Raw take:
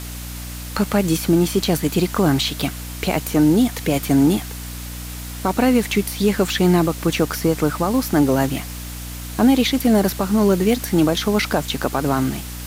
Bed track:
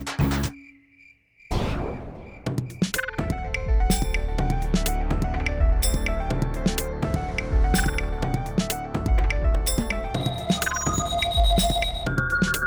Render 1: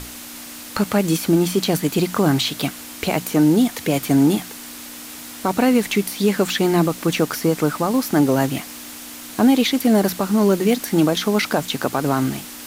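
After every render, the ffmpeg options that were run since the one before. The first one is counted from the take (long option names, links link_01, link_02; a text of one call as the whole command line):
ffmpeg -i in.wav -af "bandreject=frequency=60:width_type=h:width=6,bandreject=frequency=120:width_type=h:width=6,bandreject=frequency=180:width_type=h:width=6" out.wav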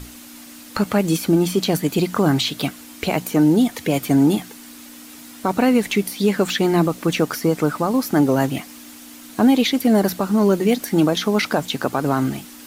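ffmpeg -i in.wav -af "afftdn=noise_reduction=7:noise_floor=-36" out.wav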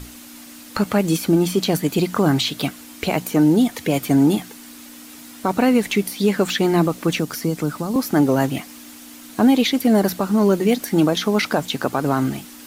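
ffmpeg -i in.wav -filter_complex "[0:a]asettb=1/sr,asplit=3[link_01][link_02][link_03];[link_01]atrim=end=7.194[link_04];[link_02]atrim=start=7.19:end=7.96,asetpts=PTS-STARTPTS,afade=type=in:duration=0.004:curve=qsin,afade=type=out:start_time=0.766:duration=0.004:curve=qsin,acrossover=split=310|3000[link_05][link_06][link_07];[link_06]acompressor=threshold=-34dB:ratio=2:attack=3.2:release=140:knee=2.83:detection=peak[link_08];[link_05][link_08][link_07]amix=inputs=3:normalize=0[link_09];[link_03]atrim=start=7.956[link_10];[link_04][link_09]acrossfade=duration=0.004:curve1=hsin:curve2=qsin[link_11];[link_11][link_10]acrossfade=duration=0.004:curve1=qsin:curve2=hsin" out.wav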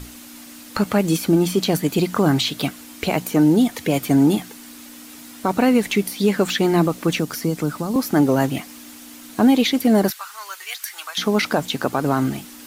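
ffmpeg -i in.wav -filter_complex "[0:a]asettb=1/sr,asplit=3[link_01][link_02][link_03];[link_01]atrim=end=10.104[link_04];[link_02]atrim=start=10.1:end=11.18,asetpts=PTS-STARTPTS,afade=type=in:duration=0.004:curve=qsin,afade=type=out:start_time=1.076:duration=0.004:curve=qsin,highpass=frequency=1200:width=0.5412,highpass=frequency=1200:width=1.3066[link_05];[link_03]atrim=start=11.176[link_06];[link_04][link_05]acrossfade=duration=0.004:curve1=hsin:curve2=qsin[link_07];[link_07][link_06]acrossfade=duration=0.004:curve1=qsin:curve2=hsin" out.wav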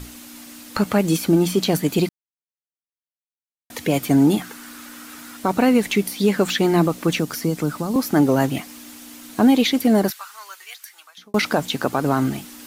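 ffmpeg -i in.wav -filter_complex "[0:a]asettb=1/sr,asplit=3[link_01][link_02][link_03];[link_01]atrim=end=4.404[link_04];[link_02]atrim=start=4.4:end=5.37,asetpts=PTS-STARTPTS,afade=type=in:duration=0.004:curve=qsin,afade=type=out:start_time=0.966:duration=0.004:curve=qsin,equalizer=frequency=1400:width=1.8:gain=11[link_05];[link_03]atrim=start=5.366[link_06];[link_04][link_05]acrossfade=duration=0.004:curve1=hsin:curve2=qsin[link_07];[link_07][link_06]acrossfade=duration=0.004:curve1=qsin:curve2=hsin,asplit=4[link_08][link_09][link_10][link_11];[link_08]atrim=end=2.09,asetpts=PTS-STARTPTS,afade=type=out:start_time=2.086:duration=0.004:curve=hsin[link_12];[link_09]atrim=start=2.09:end=3.7,asetpts=PTS-STARTPTS,volume=0[link_13];[link_10]atrim=start=3.7:end=11.34,asetpts=PTS-STARTPTS,afade=type=in:duration=0.004:curve=hsin,afade=type=out:start_time=6.12:duration=1.52[link_14];[link_11]atrim=start=11.34,asetpts=PTS-STARTPTS,afade=type=in:duration=0.004:curve=hsin[link_15];[link_12][link_13][link_14][link_15]concat=n=4:v=0:a=1" out.wav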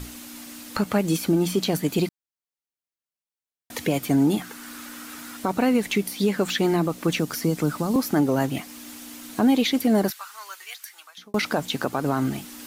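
ffmpeg -i in.wav -af "alimiter=limit=-12dB:level=0:latency=1:release=479" out.wav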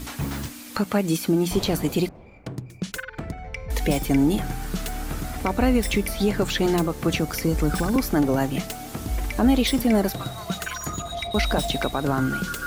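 ffmpeg -i in.wav -i bed.wav -filter_complex "[1:a]volume=-6.5dB[link_01];[0:a][link_01]amix=inputs=2:normalize=0" out.wav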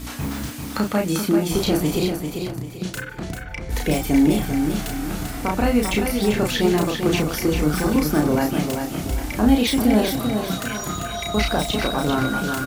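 ffmpeg -i in.wav -filter_complex "[0:a]asplit=2[link_01][link_02];[link_02]adelay=33,volume=-3dB[link_03];[link_01][link_03]amix=inputs=2:normalize=0,asplit=2[link_04][link_05];[link_05]aecho=0:1:393|786|1179|1572:0.501|0.185|0.0686|0.0254[link_06];[link_04][link_06]amix=inputs=2:normalize=0" out.wav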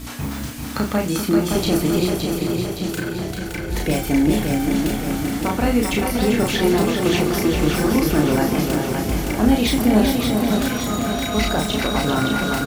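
ffmpeg -i in.wav -filter_complex "[0:a]asplit=2[link_01][link_02];[link_02]adelay=42,volume=-13dB[link_03];[link_01][link_03]amix=inputs=2:normalize=0,aecho=1:1:567|1134|1701|2268|2835|3402|3969|4536:0.562|0.326|0.189|0.11|0.0636|0.0369|0.0214|0.0124" out.wav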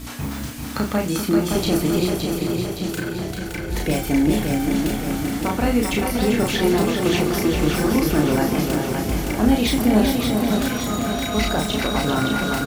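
ffmpeg -i in.wav -af "volume=-1dB" out.wav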